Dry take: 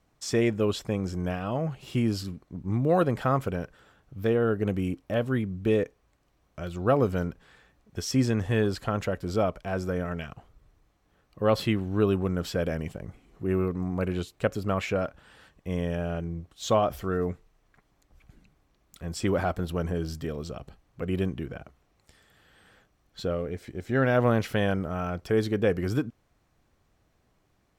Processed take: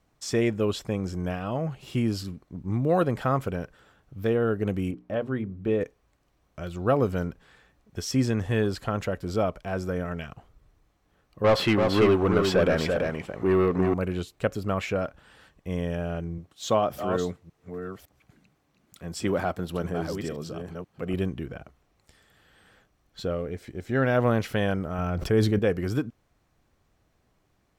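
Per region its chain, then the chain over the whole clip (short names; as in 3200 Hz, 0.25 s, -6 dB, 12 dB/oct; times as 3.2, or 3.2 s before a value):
4.91–5.81 LPF 1600 Hz 6 dB/oct + low shelf 160 Hz -4.5 dB + notches 60/120/180/240/300/360/420 Hz
11.44–13.94 overdrive pedal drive 21 dB, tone 2000 Hz, clips at -11.5 dBFS + echo 0.337 s -4.5 dB
16.38–21.14 reverse delay 0.558 s, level -7.5 dB + HPF 110 Hz
24.98–25.59 low shelf 180 Hz +7 dB + sustainer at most 49 dB/s
whole clip: dry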